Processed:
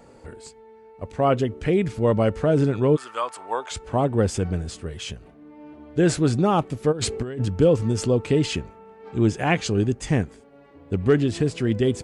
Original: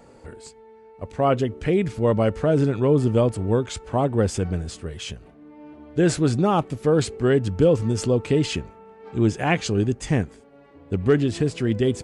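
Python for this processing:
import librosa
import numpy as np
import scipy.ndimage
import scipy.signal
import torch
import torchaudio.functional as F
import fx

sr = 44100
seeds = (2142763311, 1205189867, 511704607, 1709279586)

y = fx.highpass_res(x, sr, hz=fx.line((2.95, 1500.0), (3.7, 750.0)), q=2.8, at=(2.95, 3.7), fade=0.02)
y = fx.over_compress(y, sr, threshold_db=-27.0, ratio=-1.0, at=(6.91, 7.45), fade=0.02)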